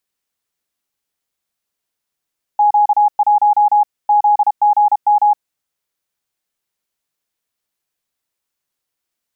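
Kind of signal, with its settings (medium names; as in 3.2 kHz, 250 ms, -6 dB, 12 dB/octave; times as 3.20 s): Morse "Q1 ZGM" 32 wpm 832 Hz -8 dBFS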